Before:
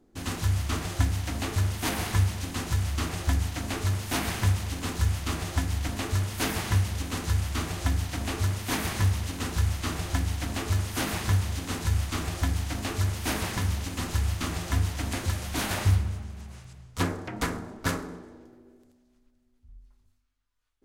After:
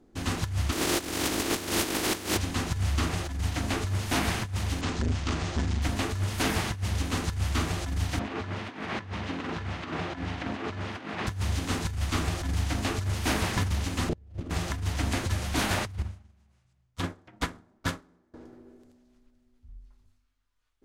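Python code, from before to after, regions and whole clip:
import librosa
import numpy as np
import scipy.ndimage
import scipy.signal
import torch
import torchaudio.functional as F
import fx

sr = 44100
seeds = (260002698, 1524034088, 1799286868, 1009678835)

y = fx.spec_flatten(x, sr, power=0.3, at=(0.71, 2.36), fade=0.02)
y = fx.peak_eq(y, sr, hz=330.0, db=13.0, octaves=0.96, at=(0.71, 2.36), fade=0.02)
y = fx.env_flatten(y, sr, amount_pct=50, at=(0.71, 2.36), fade=0.02)
y = fx.chain(y, sr, fx.lowpass(hz=7400.0, slope=24),
    fx.transformer_sat(knee_hz=300.0), at=(4.81, 5.82))
y = fx.chain(y, sr, fx.bandpass_edges(low_hz=170.0, high_hz=2800.0),
    fx.over_compress(threshold_db=-36.0, ratio=-0.5), at=(8.19, 11.27))
y = fx.chain(y, sr, fx.lowpass(hz=2300.0, slope=6),
    fx.low_shelf_res(hz=730.0, db=11.0, q=1.5), at=(14.09, 14.5))
y = fx.chain(y, sr, fx.notch(hz=440.0, q=10.0),
    fx.dynamic_eq(hz=3400.0, q=3.5, threshold_db=-55.0, ratio=4.0, max_db=5),
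    fx.upward_expand(threshold_db=-39.0, expansion=2.5), at=(16.02, 18.34))
y = fx.high_shelf(y, sr, hz=11000.0, db=-10.5)
y = fx.over_compress(y, sr, threshold_db=-27.0, ratio=-0.5)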